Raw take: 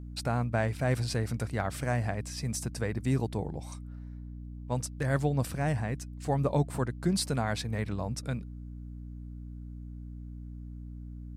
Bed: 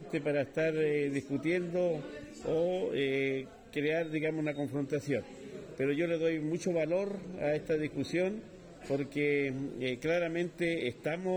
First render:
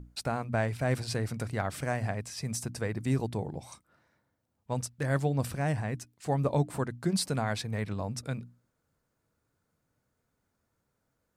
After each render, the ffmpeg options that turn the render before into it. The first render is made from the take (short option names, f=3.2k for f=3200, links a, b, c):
-af "bandreject=f=60:t=h:w=6,bandreject=f=120:t=h:w=6,bandreject=f=180:t=h:w=6,bandreject=f=240:t=h:w=6,bandreject=f=300:t=h:w=6"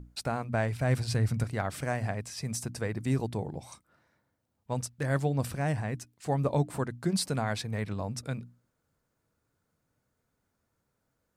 -filter_complex "[0:a]asettb=1/sr,asplit=3[a][b][c];[a]atrim=end=0.604[d];[b]atrim=start=0.6:end=1.44,asetpts=PTS-STARTPTS,afade=t=in:d=0.004:c=qsin,afade=t=out:st=0.836:d=0.004:c=qsin,asubboost=boost=9:cutoff=210[e];[c]atrim=start=1.436[f];[d][e]acrossfade=d=0.004:c1=hsin:c2=qsin[g];[g][f]acrossfade=d=0.004:c1=qsin:c2=hsin"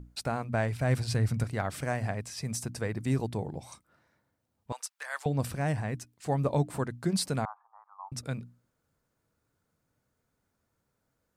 -filter_complex "[0:a]asettb=1/sr,asplit=3[a][b][c];[a]atrim=end=4.724[d];[b]atrim=start=4.72:end=5.26,asetpts=PTS-STARTPTS,afade=t=in:d=0.004:c=qsin,afade=t=out:st=0.536:d=0.004:c=qsin,highpass=f=870:w=0.5412,highpass=f=870:w=1.3066[e];[c]atrim=start=5.256[f];[d][e]acrossfade=d=0.004:c1=hsin:c2=qsin[g];[g][f]acrossfade=d=0.004:c1=qsin:c2=hsin,asettb=1/sr,asplit=3[h][i][j];[h]atrim=end=7.454[k];[i]atrim=start=7.45:end=8.12,asetpts=PTS-STARTPTS,afade=t=in:d=0.004:c=qsin,afade=t=out:st=0.666:d=0.004:c=qsin,asuperpass=centerf=1000:order=8:qfactor=2.1[l];[j]atrim=start=8.116[m];[k][l]acrossfade=d=0.004:c1=hsin:c2=qsin[n];[n][m]acrossfade=d=0.004:c1=qsin:c2=hsin"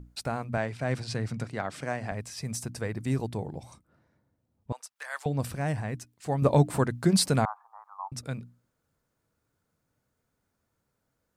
-filter_complex "[0:a]asettb=1/sr,asplit=3[a][b][c];[a]atrim=end=0.574[d];[b]atrim=start=0.57:end=2.12,asetpts=PTS-STARTPTS,afade=t=in:d=0.004:c=qsin,afade=t=out:st=1.546:d=0.004:c=qsin,highpass=150,lowpass=7.4k[e];[c]atrim=start=2.116[f];[d][e]acrossfade=d=0.004:c1=hsin:c2=qsin[g];[g][f]acrossfade=d=0.004:c1=qsin:c2=hsin,asettb=1/sr,asplit=3[h][i][j];[h]atrim=end=3.634[k];[i]atrim=start=3.63:end=4.96,asetpts=PTS-STARTPTS,afade=t=in:d=0.004:c=qsin,afade=t=out:st=1.326:d=0.004:c=qsin,tiltshelf=f=630:g=6.5[l];[j]atrim=start=4.956[m];[k][l]acrossfade=d=0.004:c1=hsin:c2=qsin[n];[n][m]acrossfade=d=0.004:c1=qsin:c2=hsin,asettb=1/sr,asplit=3[o][p][q];[o]atrim=end=6.424[r];[p]atrim=start=6.42:end=8.08,asetpts=PTS-STARTPTS,afade=t=in:d=0.004:c=qsin,afade=t=out:st=1.656:d=0.004:c=qsin,acontrast=62[s];[q]atrim=start=8.076[t];[r][s]acrossfade=d=0.004:c1=hsin:c2=qsin[u];[u][t]acrossfade=d=0.004:c1=qsin:c2=hsin"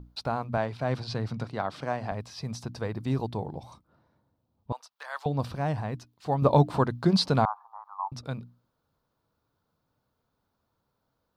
-filter_complex "[0:a]acrossover=split=7600[a][b];[b]acompressor=threshold=-57dB:ratio=4:attack=1:release=60[c];[a][c]amix=inputs=2:normalize=0,equalizer=f=1k:t=o:w=1:g=7,equalizer=f=2k:t=o:w=1:g=-7,equalizer=f=4k:t=o:w=1:g=7,equalizer=f=8k:t=o:w=1:g=-12"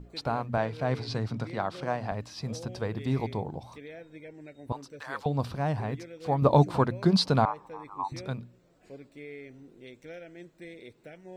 -filter_complex "[1:a]volume=-13.5dB[a];[0:a][a]amix=inputs=2:normalize=0"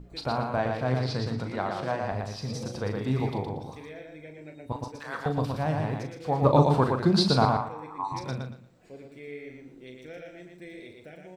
-filter_complex "[0:a]asplit=2[a][b];[b]adelay=39,volume=-8.5dB[c];[a][c]amix=inputs=2:normalize=0,aecho=1:1:117|234|351:0.631|0.151|0.0363"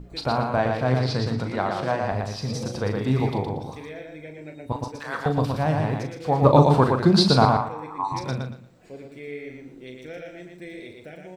-af "volume=5dB,alimiter=limit=-3dB:level=0:latency=1"